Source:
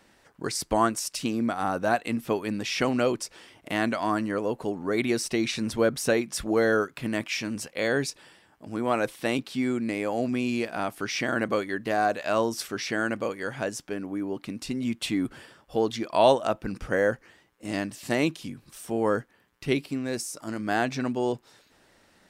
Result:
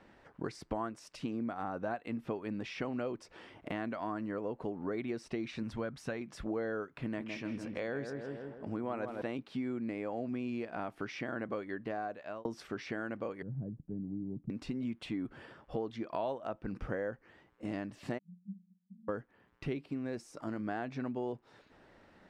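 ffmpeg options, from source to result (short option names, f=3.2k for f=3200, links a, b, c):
-filter_complex "[0:a]asettb=1/sr,asplit=3[a][b][c];[a]atrim=end=5.634[d];[b]atrim=start=5.63:end=6.21,asetpts=PTS-STARTPTS,afade=t=in:d=0.004:c=qsin,afade=t=out:st=0.576:d=0.004:c=qsin,equalizer=f=410:t=o:w=1.5:g=-7.5[e];[c]atrim=start=6.206[f];[d][e]acrossfade=d=0.004:c1=hsin:c2=qsin[g];[g][f]acrossfade=d=0.004:c1=qsin:c2=hsin,asettb=1/sr,asplit=3[h][i][j];[h]atrim=end=6.914[k];[i]atrim=start=6.91:end=9.22,asetpts=PTS-STARTPTS,afade=t=in:d=0.004:c=qsin,afade=t=out:st=2.306:d=0.004:c=qsin,asplit=2[l][m];[m]adelay=161,lowpass=f=1.7k:p=1,volume=-7dB,asplit=2[n][o];[o]adelay=161,lowpass=f=1.7k:p=1,volume=0.5,asplit=2[p][q];[q]adelay=161,lowpass=f=1.7k:p=1,volume=0.5,asplit=2[r][s];[s]adelay=161,lowpass=f=1.7k:p=1,volume=0.5,asplit=2[t][u];[u]adelay=161,lowpass=f=1.7k:p=1,volume=0.5,asplit=2[v][w];[w]adelay=161,lowpass=f=1.7k:p=1,volume=0.5[x];[l][n][p][r][t][v][x]amix=inputs=7:normalize=0,atrim=end_sample=101871[y];[j]atrim=start=9.216[z];[k][y]acrossfade=d=0.004:c1=hsin:c2=qsin[aa];[aa][z]acrossfade=d=0.004:c1=qsin:c2=hsin,asettb=1/sr,asplit=3[ab][ac][ad];[ab]atrim=end=13.424[ae];[ac]atrim=start=13.42:end=14.5,asetpts=PTS-STARTPTS,afade=t=in:d=0.004:c=qsin,afade=t=out:st=1.076:d=0.004:c=qsin,lowpass=f=160:t=q:w=1.6[af];[ad]atrim=start=14.496[ag];[ae][af]acrossfade=d=0.004:c1=hsin:c2=qsin[ah];[ah][ag]acrossfade=d=0.004:c1=qsin:c2=hsin,asplit=3[ai][aj][ak];[ai]afade=t=out:st=18.17:d=0.02[al];[aj]asuperpass=centerf=190:order=8:qfactor=6.6,afade=t=in:st=18.17:d=0.02,afade=t=out:st=19.08:d=0.02[am];[ak]afade=t=in:st=19.08:d=0.02[an];[al][am][an]amix=inputs=3:normalize=0,asplit=2[ao][ap];[ao]atrim=end=12.45,asetpts=PTS-STARTPTS,afade=t=out:st=11.72:d=0.73[aq];[ap]atrim=start=12.45,asetpts=PTS-STARTPTS,afade=t=in:d=0.004:c=hsin[ar];[aq][ar]concat=n=2:v=0:a=1,acompressor=threshold=-37dB:ratio=4,lowpass=f=2k:p=1,aemphasis=mode=reproduction:type=cd,volume=1dB"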